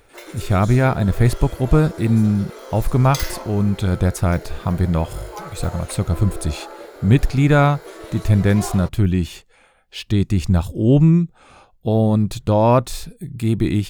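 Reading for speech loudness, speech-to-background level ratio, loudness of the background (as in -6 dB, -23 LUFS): -18.5 LUFS, 17.0 dB, -35.5 LUFS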